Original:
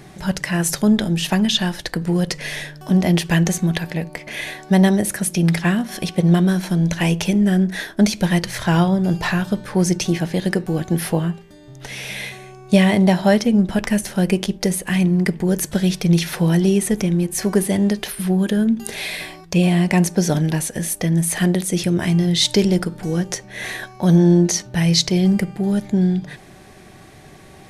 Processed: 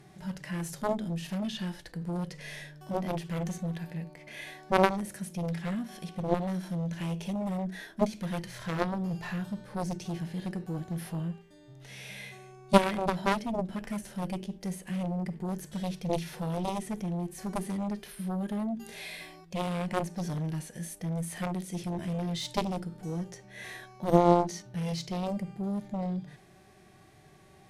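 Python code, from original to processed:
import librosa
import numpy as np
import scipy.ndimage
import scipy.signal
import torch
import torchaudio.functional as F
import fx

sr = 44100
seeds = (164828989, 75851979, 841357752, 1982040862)

y = fx.hpss(x, sr, part='percussive', gain_db=-13)
y = fx.cheby_harmonics(y, sr, harmonics=(3,), levels_db=(-7,), full_scale_db=-3.0)
y = y * librosa.db_to_amplitude(-1.0)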